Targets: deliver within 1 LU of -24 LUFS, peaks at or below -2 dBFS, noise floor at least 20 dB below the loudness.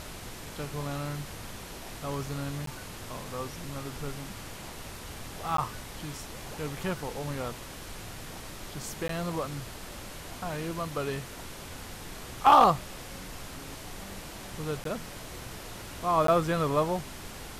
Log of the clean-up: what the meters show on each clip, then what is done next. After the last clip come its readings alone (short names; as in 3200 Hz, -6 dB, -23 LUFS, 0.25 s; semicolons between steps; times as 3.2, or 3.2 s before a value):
dropouts 5; longest dropout 13 ms; noise floor -43 dBFS; noise floor target -53 dBFS; loudness -32.5 LUFS; peak -11.0 dBFS; loudness target -24.0 LUFS
-> interpolate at 2.66/5.57/9.08/14.84/16.27, 13 ms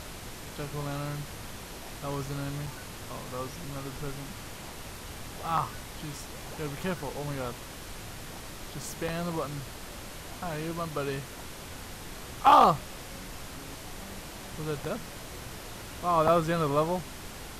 dropouts 0; noise floor -43 dBFS; noise floor target -53 dBFS
-> noise print and reduce 10 dB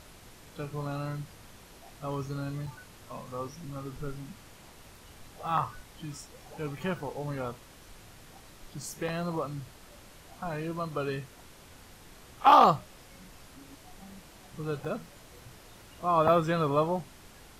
noise floor -53 dBFS; loudness -30.0 LUFS; peak -11.0 dBFS; loudness target -24.0 LUFS
-> gain +6 dB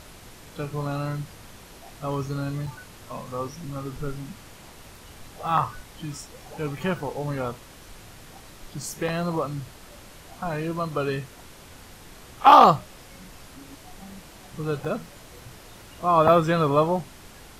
loudness -24.0 LUFS; peak -5.0 dBFS; noise floor -47 dBFS